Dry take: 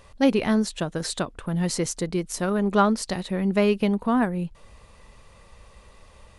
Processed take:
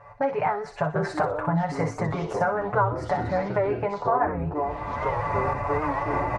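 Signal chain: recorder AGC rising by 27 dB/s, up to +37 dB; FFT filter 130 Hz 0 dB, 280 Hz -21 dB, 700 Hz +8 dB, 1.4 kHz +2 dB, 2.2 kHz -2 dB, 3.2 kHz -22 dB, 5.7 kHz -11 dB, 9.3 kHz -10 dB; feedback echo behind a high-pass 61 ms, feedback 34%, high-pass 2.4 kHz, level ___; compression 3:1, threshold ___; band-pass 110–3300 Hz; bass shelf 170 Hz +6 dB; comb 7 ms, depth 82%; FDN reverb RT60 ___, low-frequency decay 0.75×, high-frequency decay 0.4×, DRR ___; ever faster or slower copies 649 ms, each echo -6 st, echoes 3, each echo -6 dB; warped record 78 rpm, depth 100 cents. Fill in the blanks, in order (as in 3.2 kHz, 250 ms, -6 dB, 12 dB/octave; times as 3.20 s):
-5.5 dB, -25 dBFS, 0.31 s, 6 dB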